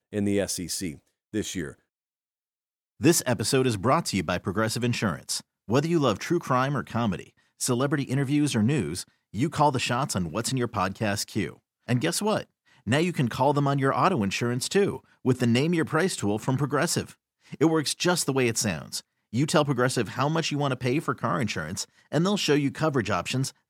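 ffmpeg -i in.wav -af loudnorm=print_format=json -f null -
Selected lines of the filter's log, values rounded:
"input_i" : "-26.1",
"input_tp" : "-7.4",
"input_lra" : "2.5",
"input_thresh" : "-36.3",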